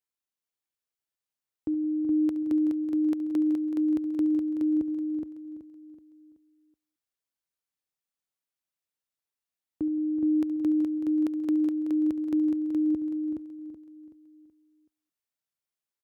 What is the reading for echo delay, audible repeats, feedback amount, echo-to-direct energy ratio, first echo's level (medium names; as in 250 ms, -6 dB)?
70 ms, 11, no regular repeats, -2.5 dB, -14.5 dB